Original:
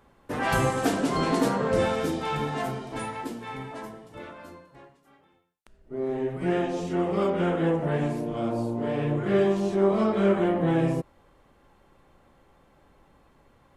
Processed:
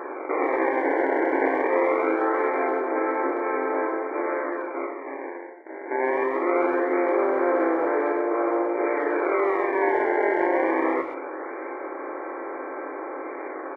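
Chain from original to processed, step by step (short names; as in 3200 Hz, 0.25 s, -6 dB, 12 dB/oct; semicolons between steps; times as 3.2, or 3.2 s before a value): per-bin compression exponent 0.4; in parallel at 0 dB: limiter -17 dBFS, peak gain reduction 10.5 dB; on the sum: decimation with a swept rate 20×, swing 160% 0.22 Hz; brick-wall FIR band-pass 270–2400 Hz; speakerphone echo 0.13 s, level -16 dB; on a send at -6.5 dB: reverb RT60 0.45 s, pre-delay 3 ms; on the sum: gain -6 dB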